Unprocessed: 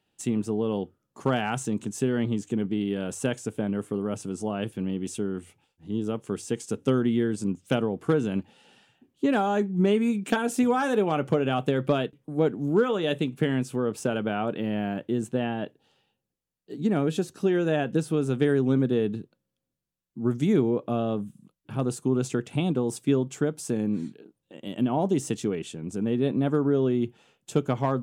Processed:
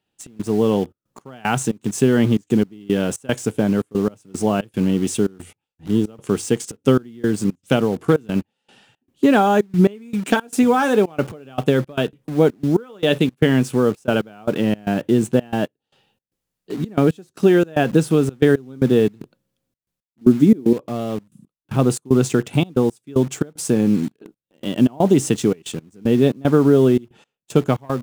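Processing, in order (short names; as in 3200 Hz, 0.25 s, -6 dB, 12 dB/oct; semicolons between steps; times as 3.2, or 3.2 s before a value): 20.21–20.73 bell 270 Hz +15 dB 1.4 oct; AGC gain up to 11 dB; in parallel at -8 dB: bit-crush 5-bit; on the sum: step gate "xx.xxxx.x.." 114 bpm -24 dB; gain -2.5 dB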